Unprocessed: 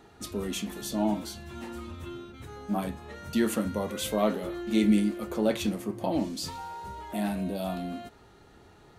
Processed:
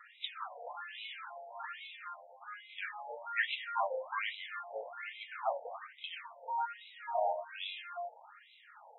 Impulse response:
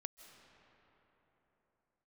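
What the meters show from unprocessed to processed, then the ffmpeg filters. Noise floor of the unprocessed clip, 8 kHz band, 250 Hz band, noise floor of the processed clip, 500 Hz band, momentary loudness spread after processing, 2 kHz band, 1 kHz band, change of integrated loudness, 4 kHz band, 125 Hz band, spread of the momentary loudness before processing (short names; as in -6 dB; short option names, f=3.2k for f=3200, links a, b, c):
-56 dBFS, under -40 dB, under -40 dB, -60 dBFS, -9.5 dB, 13 LU, +3.0 dB, -0.5 dB, -9.5 dB, -4.5 dB, under -40 dB, 15 LU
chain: -af "asubboost=boost=11.5:cutoff=130,afftfilt=real='re*between(b*sr/1024,640*pow(2900/640,0.5+0.5*sin(2*PI*1.2*pts/sr))/1.41,640*pow(2900/640,0.5+0.5*sin(2*PI*1.2*pts/sr))*1.41)':imag='im*between(b*sr/1024,640*pow(2900/640,0.5+0.5*sin(2*PI*1.2*pts/sr))/1.41,640*pow(2900/640,0.5+0.5*sin(2*PI*1.2*pts/sr))*1.41)':win_size=1024:overlap=0.75,volume=8.5dB"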